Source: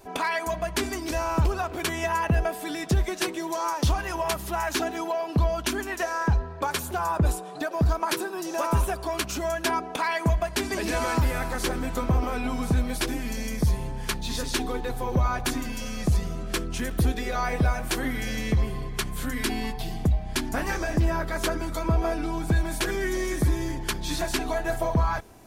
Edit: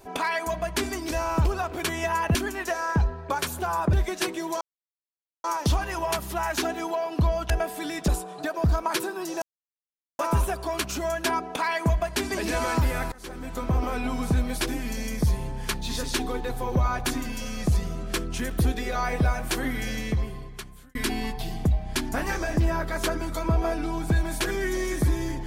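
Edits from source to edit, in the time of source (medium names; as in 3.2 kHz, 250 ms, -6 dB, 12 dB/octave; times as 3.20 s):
2.35–2.93 s: swap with 5.67–7.25 s
3.61 s: insert silence 0.83 s
8.59 s: insert silence 0.77 s
11.52–12.25 s: fade in, from -23.5 dB
18.25–19.35 s: fade out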